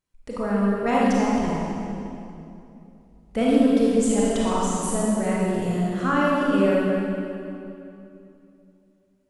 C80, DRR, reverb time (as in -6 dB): -1.5 dB, -6.0 dB, 2.7 s